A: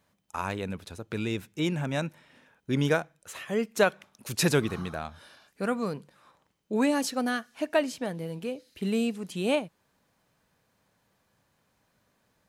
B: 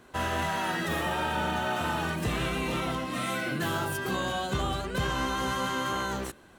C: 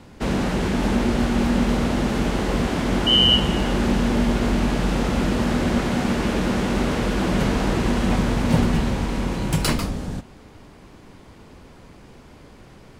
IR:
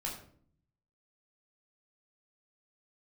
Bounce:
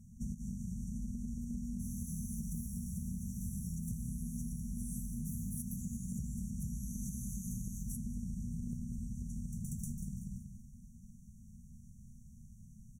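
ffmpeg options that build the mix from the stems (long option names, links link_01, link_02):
-filter_complex "[0:a]acompressor=threshold=-26dB:ratio=6,highpass=frequency=1500:width_type=q:width=6.9,asplit=2[link_01][link_02];[link_02]highpass=frequency=720:poles=1,volume=17dB,asoftclip=type=tanh:threshold=-15.5dB[link_03];[link_01][link_03]amix=inputs=2:normalize=0,lowpass=frequency=3200:poles=1,volume=-6dB,volume=-11dB,asplit=2[link_04][link_05];[1:a]equalizer=frequency=11000:width=4.7:gain=11.5,adelay=1650,volume=-1dB,asplit=3[link_06][link_07][link_08];[link_07]volume=-10dB[link_09];[link_08]volume=-20dB[link_10];[2:a]volume=-8.5dB,asplit=3[link_11][link_12][link_13];[link_12]volume=-19.5dB[link_14];[link_13]volume=-4dB[link_15];[link_05]apad=whole_len=573041[link_16];[link_11][link_16]sidechaincompress=threshold=-48dB:ratio=8:attack=7.3:release=504[link_17];[3:a]atrim=start_sample=2205[link_18];[link_09][link_14]amix=inputs=2:normalize=0[link_19];[link_19][link_18]afir=irnorm=-1:irlink=0[link_20];[link_10][link_15]amix=inputs=2:normalize=0,aecho=0:1:189|378|567|756|945:1|0.33|0.109|0.0359|0.0119[link_21];[link_04][link_06][link_17][link_20][link_21]amix=inputs=5:normalize=0,afftfilt=real='re*(1-between(b*sr/4096,240,5600))':imag='im*(1-between(b*sr/4096,240,5600))':win_size=4096:overlap=0.75,acompressor=threshold=-37dB:ratio=6"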